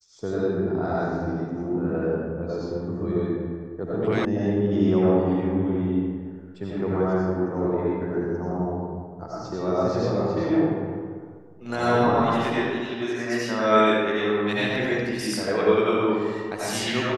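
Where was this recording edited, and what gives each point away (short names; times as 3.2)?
4.25 sound cut off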